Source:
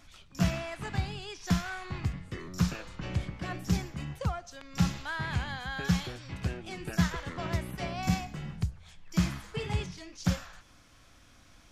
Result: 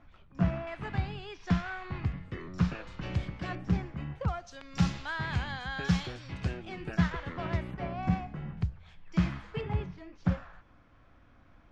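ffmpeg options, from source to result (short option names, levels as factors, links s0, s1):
-af "asetnsamples=n=441:p=0,asendcmd='0.67 lowpass f 2800;2.87 lowpass f 5000;3.55 lowpass f 2100;4.28 lowpass f 5500;6.65 lowpass f 3000;7.74 lowpass f 1700;8.57 lowpass f 2800;9.61 lowpass f 1600',lowpass=1500"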